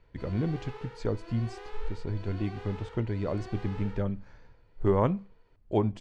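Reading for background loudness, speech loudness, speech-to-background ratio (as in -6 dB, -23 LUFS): -46.5 LUFS, -32.0 LUFS, 14.5 dB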